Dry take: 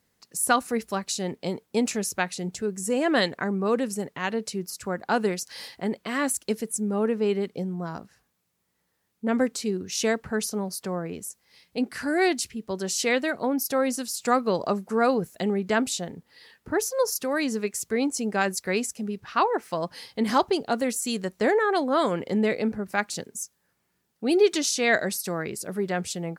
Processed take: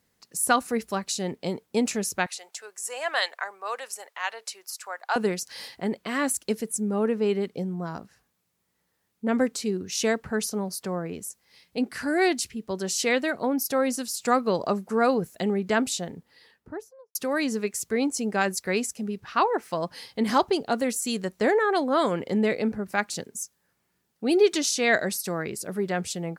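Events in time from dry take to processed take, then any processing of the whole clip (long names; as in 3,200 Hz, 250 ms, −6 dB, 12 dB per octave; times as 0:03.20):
0:02.26–0:05.16: high-pass filter 700 Hz 24 dB per octave
0:16.10–0:17.15: fade out and dull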